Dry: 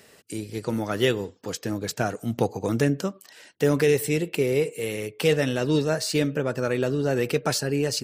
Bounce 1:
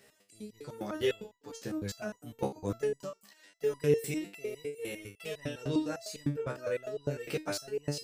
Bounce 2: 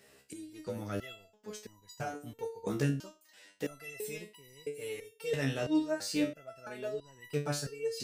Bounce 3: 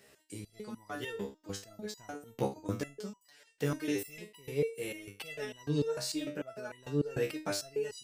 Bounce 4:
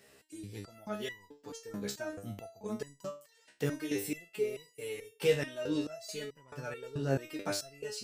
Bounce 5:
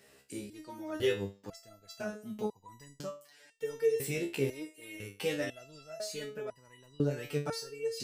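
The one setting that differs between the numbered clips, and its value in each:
stepped resonator, rate: 9.9, 3, 6.7, 4.6, 2 Hz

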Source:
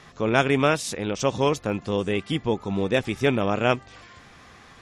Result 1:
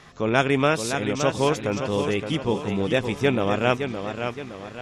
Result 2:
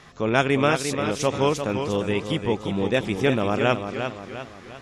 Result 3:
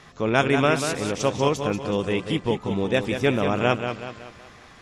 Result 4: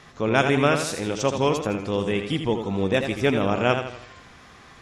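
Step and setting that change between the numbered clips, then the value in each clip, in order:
warbling echo, time: 567, 349, 188, 82 ms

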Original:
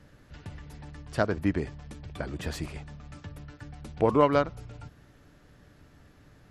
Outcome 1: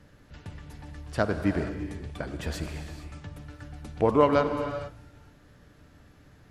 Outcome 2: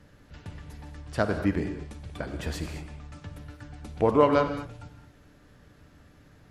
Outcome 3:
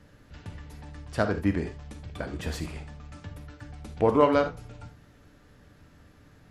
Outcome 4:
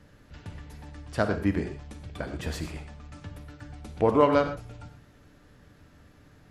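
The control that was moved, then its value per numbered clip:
non-linear reverb, gate: 0.49, 0.25, 0.1, 0.15 s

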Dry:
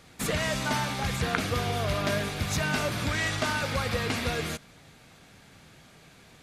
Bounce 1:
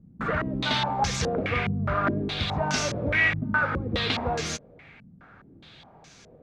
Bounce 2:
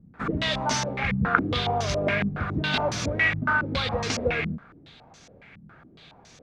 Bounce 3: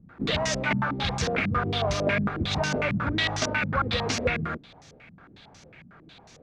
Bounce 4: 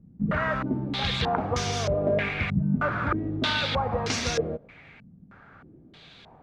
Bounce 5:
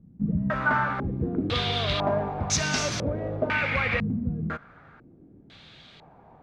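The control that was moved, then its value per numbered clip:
stepped low-pass, rate: 4.8, 7.2, 11, 3.2, 2 Hz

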